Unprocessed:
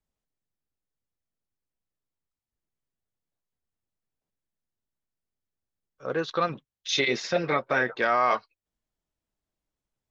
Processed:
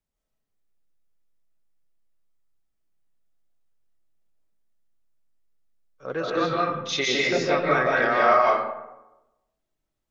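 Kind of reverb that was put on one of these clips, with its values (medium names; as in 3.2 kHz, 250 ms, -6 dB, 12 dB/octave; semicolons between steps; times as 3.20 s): algorithmic reverb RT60 1 s, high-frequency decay 0.45×, pre-delay 115 ms, DRR -4.5 dB; trim -1.5 dB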